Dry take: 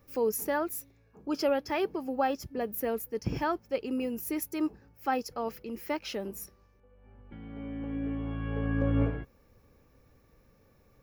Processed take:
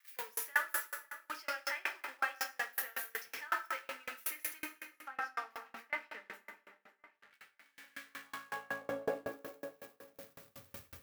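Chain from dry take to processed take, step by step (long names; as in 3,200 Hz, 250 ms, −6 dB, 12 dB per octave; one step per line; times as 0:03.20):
spike at every zero crossing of −29 dBFS
0:04.59–0:07.34: RIAA equalisation playback
noise gate −35 dBFS, range −28 dB
bass and treble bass +7 dB, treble −11 dB
downward compressor 2 to 1, threshold −29 dBFS, peak gain reduction 7.5 dB
high-pass filter sweep 1,700 Hz → 78 Hz, 0:08.01–0:10.91
tape delay 545 ms, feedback 49%, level −15 dB, low-pass 4,900 Hz
dense smooth reverb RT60 1.8 s, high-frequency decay 0.65×, DRR −1.5 dB
tremolo with a ramp in dB decaying 5.4 Hz, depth 32 dB
level +6 dB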